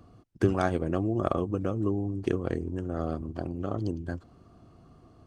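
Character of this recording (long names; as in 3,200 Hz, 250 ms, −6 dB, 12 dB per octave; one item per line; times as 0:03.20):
background noise floor −57 dBFS
spectral slope −6.5 dB per octave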